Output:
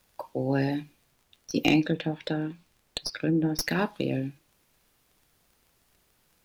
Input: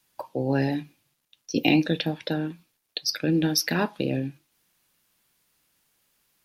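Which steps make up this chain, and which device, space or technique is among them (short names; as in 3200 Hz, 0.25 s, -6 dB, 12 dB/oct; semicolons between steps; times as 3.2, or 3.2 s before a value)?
1.8–3.59 treble ducked by the level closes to 970 Hz, closed at -19 dBFS; record under a worn stylus (tracing distortion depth 0.039 ms; crackle 20/s; pink noise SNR 39 dB); gain -2 dB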